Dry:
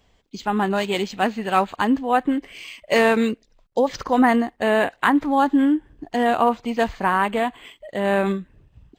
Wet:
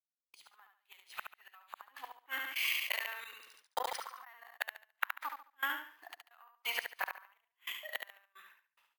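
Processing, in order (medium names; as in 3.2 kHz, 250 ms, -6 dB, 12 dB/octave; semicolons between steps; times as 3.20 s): single-diode clipper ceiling -6 dBFS; gate -47 dBFS, range -57 dB; high-pass 1.1 kHz 24 dB/octave; treble shelf 2.9 kHz -7 dB; compression 3:1, threshold -28 dBFS, peak gain reduction 8 dB; inverted gate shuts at -27 dBFS, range -37 dB; trance gate ".x.x.xx..xxx" 88 bpm -24 dB; feedback delay 71 ms, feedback 28%, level -6 dB; careless resampling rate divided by 3×, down none, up hold; 2.31–4.57 s: decay stretcher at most 43 dB/s; trim +7.5 dB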